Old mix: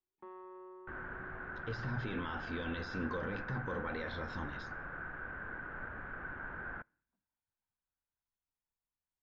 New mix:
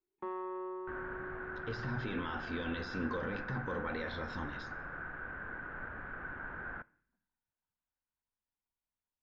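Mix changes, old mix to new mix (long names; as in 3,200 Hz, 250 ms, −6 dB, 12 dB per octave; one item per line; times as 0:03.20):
speech: send +7.5 dB
first sound +10.5 dB
second sound: send +8.5 dB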